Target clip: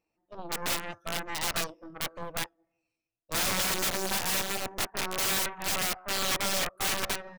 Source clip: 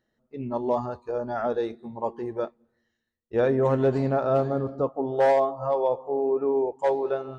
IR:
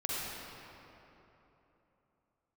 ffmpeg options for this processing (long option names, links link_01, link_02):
-af "aeval=exprs='0.224*(cos(1*acos(clip(val(0)/0.224,-1,1)))-cos(1*PI/2))+0.0708*(cos(3*acos(clip(val(0)/0.224,-1,1)))-cos(3*PI/2))+0.0794*(cos(6*acos(clip(val(0)/0.224,-1,1)))-cos(6*PI/2))+0.0126*(cos(7*acos(clip(val(0)/0.224,-1,1)))-cos(7*PI/2))+0.0355*(cos(8*acos(clip(val(0)/0.224,-1,1)))-cos(8*PI/2))':channel_layout=same,asetrate=62367,aresample=44100,atempo=0.707107,aeval=exprs='(mod(18.8*val(0)+1,2)-1)/18.8':channel_layout=same,volume=2.5dB"